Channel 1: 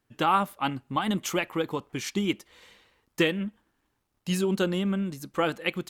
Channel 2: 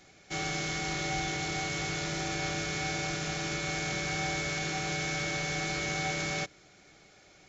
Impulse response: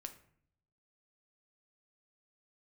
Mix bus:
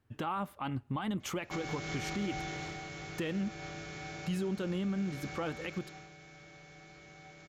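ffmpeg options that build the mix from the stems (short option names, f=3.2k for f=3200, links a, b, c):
-filter_complex "[0:a]equalizer=f=90:w=1.6:g=12,alimiter=limit=-19dB:level=0:latency=1:release=103,volume=0dB[a];[1:a]adelay=1200,volume=-0.5dB,afade=t=out:st=2.35:d=0.43:silence=0.375837,afade=t=out:st=5.79:d=0.3:silence=0.281838[b];[a][b]amix=inputs=2:normalize=0,highshelf=f=3.8k:g=-9,alimiter=level_in=3dB:limit=-24dB:level=0:latency=1:release=231,volume=-3dB"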